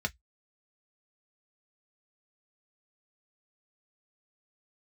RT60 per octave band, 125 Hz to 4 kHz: 0.10, 0.10, 0.05, 0.10, 0.10, 0.10 seconds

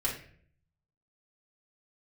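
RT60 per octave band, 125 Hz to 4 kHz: 1.0, 0.75, 0.65, 0.45, 0.55, 0.40 seconds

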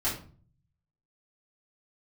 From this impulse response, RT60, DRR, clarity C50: 0.40 s, −10.0 dB, 6.5 dB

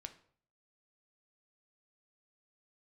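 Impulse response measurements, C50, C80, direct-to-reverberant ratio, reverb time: 13.5 dB, 18.0 dB, 7.5 dB, 0.55 s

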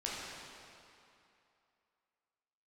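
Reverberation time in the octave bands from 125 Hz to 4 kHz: 2.3, 2.5, 2.6, 2.8, 2.5, 2.2 seconds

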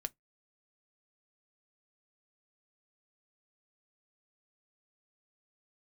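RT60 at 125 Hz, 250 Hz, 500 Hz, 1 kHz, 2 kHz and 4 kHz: 0.20, 0.15, 0.15, 0.10, 0.10, 0.10 seconds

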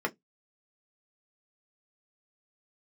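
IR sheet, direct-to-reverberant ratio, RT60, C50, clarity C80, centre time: 2.0 dB, 0.15 s, 27.5 dB, 40.5 dB, 6 ms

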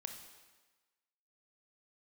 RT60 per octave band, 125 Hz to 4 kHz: 1.1, 1.2, 1.2, 1.3, 1.3, 1.2 seconds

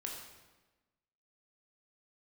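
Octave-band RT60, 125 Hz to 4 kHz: 1.3, 1.4, 1.2, 1.1, 1.1, 0.95 seconds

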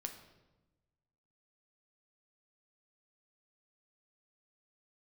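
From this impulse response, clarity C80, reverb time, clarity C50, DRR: 11.0 dB, 1.1 s, 9.0 dB, 4.5 dB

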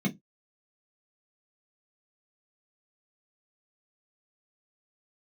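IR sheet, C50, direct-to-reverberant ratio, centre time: 19.5 dB, −2.5 dB, 14 ms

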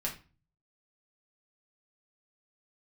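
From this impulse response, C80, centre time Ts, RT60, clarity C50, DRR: 16.0 dB, 18 ms, 0.35 s, 10.0 dB, −3.0 dB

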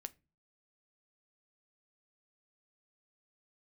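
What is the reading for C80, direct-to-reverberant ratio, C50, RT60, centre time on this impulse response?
30.5 dB, 11.5 dB, 24.5 dB, non-exponential decay, 2 ms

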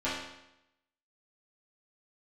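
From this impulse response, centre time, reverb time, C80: 60 ms, 0.85 s, 4.5 dB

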